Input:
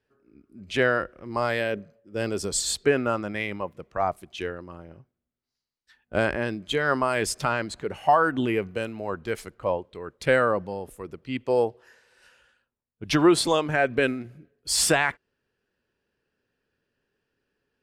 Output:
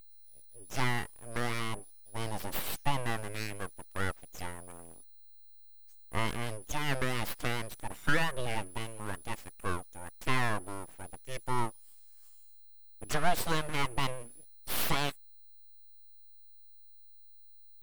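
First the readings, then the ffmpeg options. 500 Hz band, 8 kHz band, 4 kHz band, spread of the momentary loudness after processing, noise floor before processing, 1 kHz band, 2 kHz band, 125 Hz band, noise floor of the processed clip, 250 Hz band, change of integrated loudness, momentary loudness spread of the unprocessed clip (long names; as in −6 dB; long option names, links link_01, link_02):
−15.0 dB, −11.0 dB, −7.5 dB, 16 LU, −85 dBFS, −8.5 dB, −8.0 dB, −3.0 dB, −53 dBFS, −12.0 dB, −9.5 dB, 14 LU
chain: -af "aeval=exprs='val(0)+0.00631*sin(2*PI*10000*n/s)':channel_layout=same,bandreject=frequency=1700:width=15,aeval=exprs='abs(val(0))':channel_layout=same,volume=-5.5dB"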